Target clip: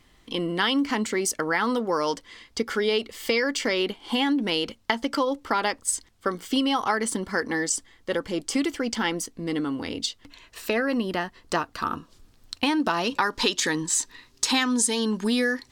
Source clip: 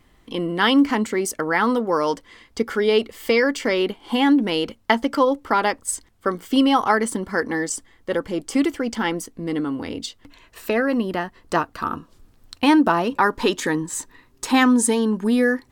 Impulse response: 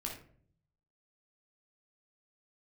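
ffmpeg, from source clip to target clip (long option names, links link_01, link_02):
-af "asetnsamples=nb_out_samples=441:pad=0,asendcmd='12.8 equalizer g 15',equalizer=frequency=4800:width=0.56:gain=7.5,acompressor=threshold=-17dB:ratio=5,volume=-3dB"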